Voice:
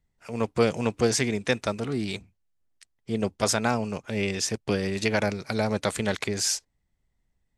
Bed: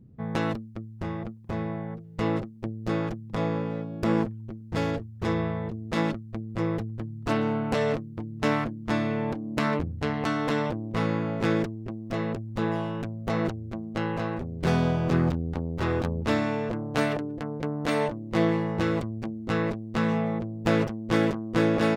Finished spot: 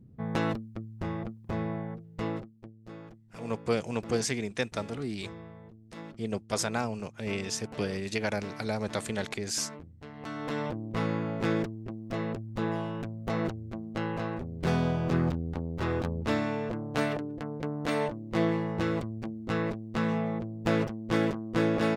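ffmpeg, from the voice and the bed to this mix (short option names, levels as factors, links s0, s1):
-filter_complex "[0:a]adelay=3100,volume=0.501[s0];[1:a]volume=4.47,afade=t=out:st=1.78:d=0.95:silence=0.149624,afade=t=in:st=10.12:d=0.68:silence=0.188365[s1];[s0][s1]amix=inputs=2:normalize=0"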